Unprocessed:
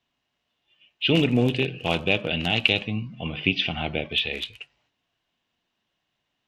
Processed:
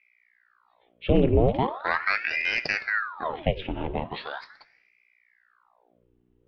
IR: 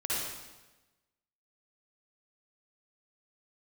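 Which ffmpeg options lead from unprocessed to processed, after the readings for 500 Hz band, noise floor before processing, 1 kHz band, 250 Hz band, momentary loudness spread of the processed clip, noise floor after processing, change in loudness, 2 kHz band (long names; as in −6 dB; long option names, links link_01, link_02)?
+1.0 dB, −79 dBFS, +5.0 dB, −3.5 dB, 13 LU, −66 dBFS, −2.0 dB, 0.0 dB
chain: -filter_complex "[0:a]tiltshelf=frequency=840:gain=7.5,aeval=exprs='val(0)+0.002*(sin(2*PI*60*n/s)+sin(2*PI*2*60*n/s)/2+sin(2*PI*3*60*n/s)/3+sin(2*PI*4*60*n/s)/4+sin(2*PI*5*60*n/s)/5)':channel_layout=same,highpass=110,lowpass=2500,asplit=2[link_01][link_02];[1:a]atrim=start_sample=2205[link_03];[link_02][link_03]afir=irnorm=-1:irlink=0,volume=-25.5dB[link_04];[link_01][link_04]amix=inputs=2:normalize=0,aeval=exprs='val(0)*sin(2*PI*1200*n/s+1200*0.9/0.4*sin(2*PI*0.4*n/s))':channel_layout=same,volume=-1.5dB"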